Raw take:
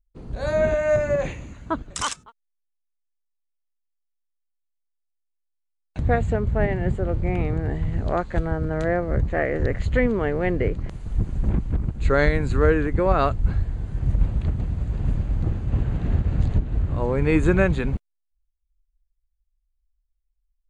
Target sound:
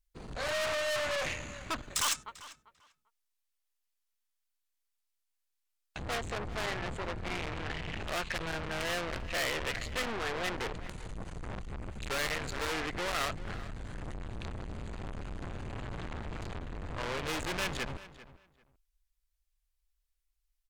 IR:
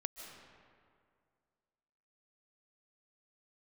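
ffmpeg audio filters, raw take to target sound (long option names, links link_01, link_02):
-filter_complex "[0:a]asettb=1/sr,asplit=3[link_01][link_02][link_03];[link_01]atrim=end=7.504[link_04];[link_02]atrim=start=7.5:end=9.76,asetpts=PTS-STARTPTS,afade=type=in:duration=0.004:curve=qsin,afade=type=out:start_time=2.256:duration=0.004:curve=qsin,equalizer=frequency=2700:width=2:gain=13[link_05];[link_03]atrim=start=9.756[link_06];[link_04][link_05]acrossfade=duration=0.004:curve1=hsin:curve2=qsin[link_07];[link_07][link_06]acrossfade=duration=0.004:curve1=qsin:curve2=hsin[link_08];[1:a]atrim=start_sample=2205,atrim=end_sample=4410,asetrate=35280,aresample=44100[link_09];[link_08][link_09]afir=irnorm=-1:irlink=0,aeval=exprs='(tanh(63.1*val(0)+0.5)-tanh(0.5))/63.1':channel_layout=same,tiltshelf=frequency=680:gain=-7.5,asplit=2[link_10][link_11];[link_11]adelay=394,lowpass=frequency=3800:poles=1,volume=-16dB,asplit=2[link_12][link_13];[link_13]adelay=394,lowpass=frequency=3800:poles=1,volume=0.19[link_14];[link_10][link_12][link_14]amix=inputs=3:normalize=0,volume=3.5dB"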